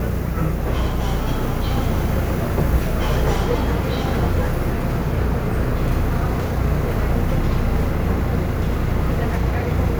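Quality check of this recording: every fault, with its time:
buzz 60 Hz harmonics 9 -25 dBFS

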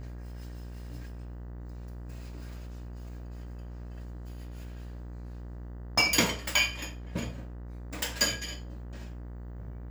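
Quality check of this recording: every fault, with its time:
buzz 60 Hz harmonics 33 -41 dBFS

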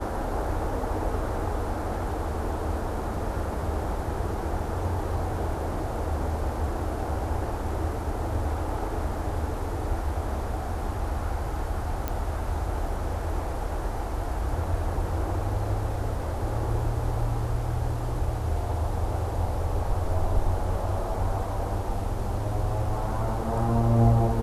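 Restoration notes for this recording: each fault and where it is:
12.08 s: pop -14 dBFS

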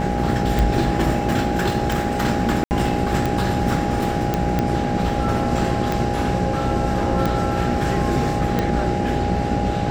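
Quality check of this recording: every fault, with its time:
buzz 60 Hz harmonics 13 -25 dBFS
tick
whine 820 Hz -26 dBFS
2.64–2.71 s: dropout 69 ms
4.34 s: pop -7 dBFS

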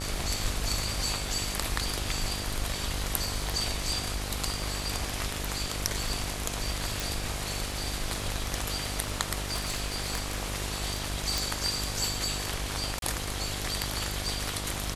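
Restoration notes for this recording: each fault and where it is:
buzz 50 Hz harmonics 26 -37 dBFS
crackle 20 per s -36 dBFS
7.00 s: pop
9.38–10.49 s: clipped -24 dBFS
11.38 s: pop
12.99–13.02 s: dropout 32 ms

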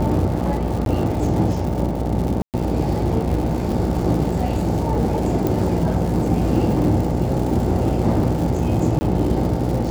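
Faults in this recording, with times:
buzz 60 Hz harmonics 15 -24 dBFS
crackle 250 per s -27 dBFS
0.85–0.86 s: dropout 12 ms
2.42–2.54 s: dropout 118 ms
5.47 s: pop
8.99–9.01 s: dropout 20 ms

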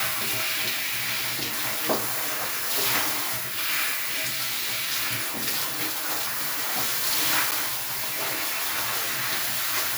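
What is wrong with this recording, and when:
7.51–7.52 s: dropout 7.9 ms

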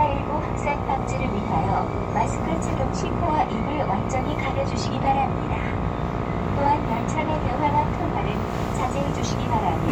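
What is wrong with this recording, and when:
buzz 60 Hz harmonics 21 -29 dBFS

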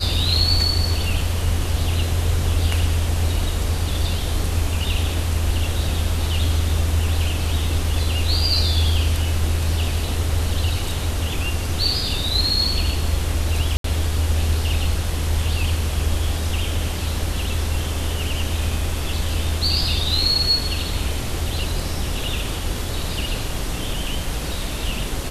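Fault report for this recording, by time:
13.77–13.84 s: dropout 73 ms

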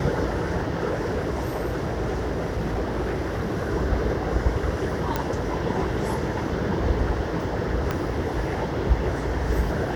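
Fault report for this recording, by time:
0.89–3.63 s: clipped -21.5 dBFS
5.16 s: pop -10 dBFS
7.91 s: pop -12 dBFS

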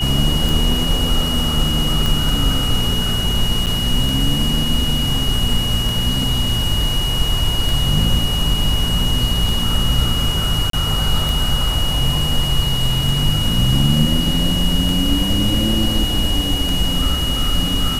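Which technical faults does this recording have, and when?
tick 33 1/3 rpm
whine 2.9 kHz -21 dBFS
2.06 s: pop
3.66–3.67 s: dropout 7.9 ms
10.70–10.73 s: dropout 33 ms

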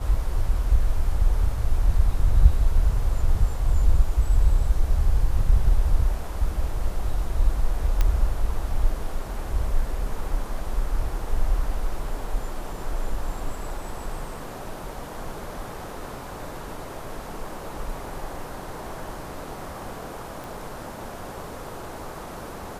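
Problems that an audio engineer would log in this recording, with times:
8.01 s: pop -9 dBFS
20.44 s: pop

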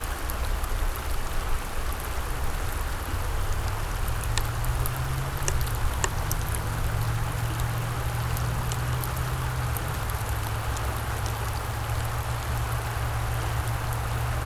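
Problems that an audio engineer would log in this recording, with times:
crackle 180 per s -35 dBFS

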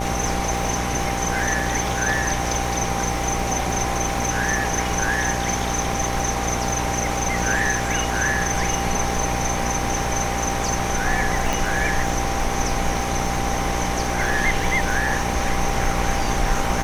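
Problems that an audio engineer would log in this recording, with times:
buzz 60 Hz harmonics 17 -27 dBFS
crackle 230 per s -31 dBFS
whine 790 Hz -28 dBFS
11.53 s: pop

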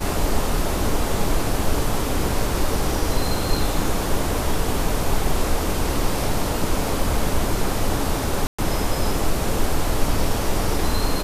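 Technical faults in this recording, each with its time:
8.47–8.59 s: dropout 115 ms

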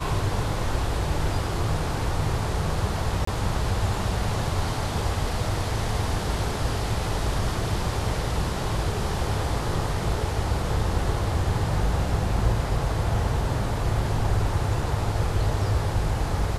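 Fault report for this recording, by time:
3.25–3.27 s: dropout 24 ms

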